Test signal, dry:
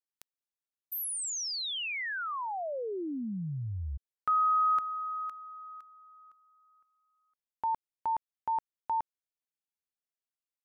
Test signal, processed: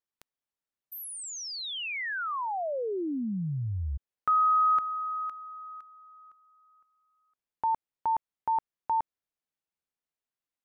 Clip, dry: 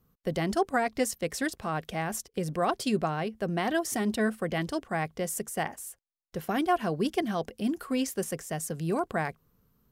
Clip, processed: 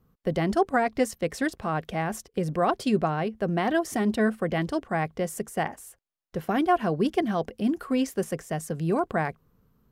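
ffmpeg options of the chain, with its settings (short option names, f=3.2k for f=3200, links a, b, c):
-af "highshelf=f=3.4k:g=-9.5,volume=4dB"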